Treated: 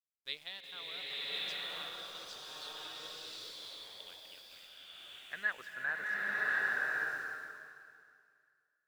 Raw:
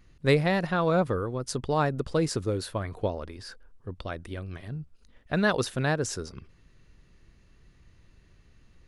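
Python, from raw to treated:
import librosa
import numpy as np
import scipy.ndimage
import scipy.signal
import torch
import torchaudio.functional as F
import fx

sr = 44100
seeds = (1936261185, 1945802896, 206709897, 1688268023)

y = fx.filter_sweep_bandpass(x, sr, from_hz=3400.0, to_hz=810.0, start_s=3.96, end_s=7.49, q=7.6)
y = np.where(np.abs(y) >= 10.0 ** (-58.5 / 20.0), y, 0.0)
y = fx.rev_bloom(y, sr, seeds[0], attack_ms=1090, drr_db=-7.5)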